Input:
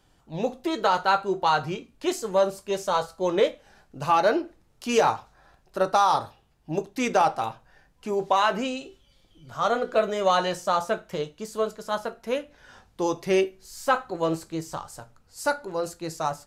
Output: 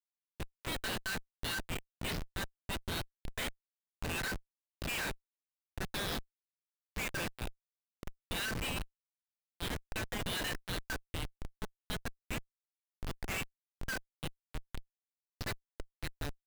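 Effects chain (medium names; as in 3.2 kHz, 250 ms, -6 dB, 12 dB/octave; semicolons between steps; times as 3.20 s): brick-wall FIR band-pass 1.5–5.5 kHz; Schmitt trigger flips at -37.5 dBFS; trim +4.5 dB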